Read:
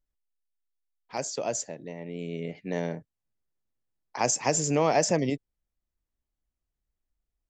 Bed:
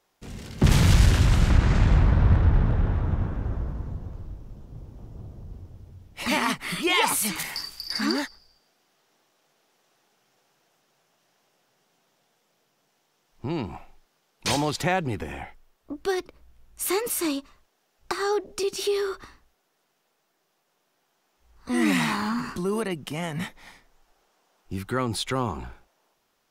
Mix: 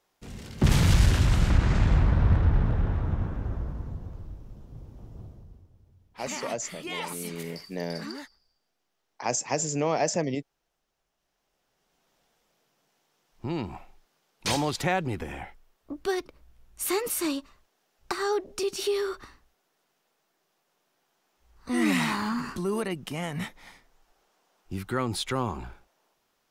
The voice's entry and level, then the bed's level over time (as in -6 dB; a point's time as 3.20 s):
5.05 s, -2.5 dB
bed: 5.23 s -2.5 dB
5.68 s -13 dB
11.14 s -13 dB
12.16 s -2 dB